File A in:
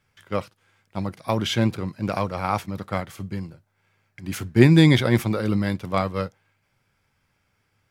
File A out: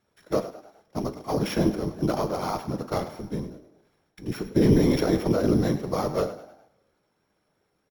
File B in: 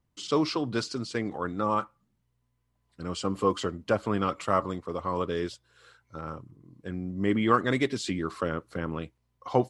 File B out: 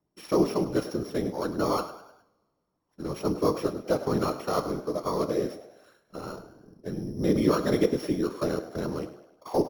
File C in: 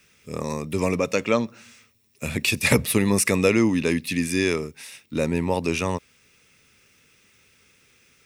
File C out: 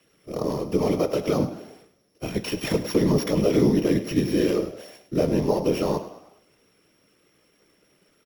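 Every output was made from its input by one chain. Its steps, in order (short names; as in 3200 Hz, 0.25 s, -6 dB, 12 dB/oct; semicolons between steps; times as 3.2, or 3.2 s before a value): sample sorter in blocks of 8 samples; HPF 280 Hz 12 dB/oct; dynamic EQ 8600 Hz, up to -7 dB, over -51 dBFS, Q 3.6; limiter -14.5 dBFS; tilt shelf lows +8 dB, about 880 Hz; whisperiser; vibrato 3.2 Hz 14 cents; frequency-shifting echo 0.103 s, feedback 45%, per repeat +51 Hz, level -14 dB; two-slope reverb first 0.38 s, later 1.6 s, from -20 dB, DRR 11.5 dB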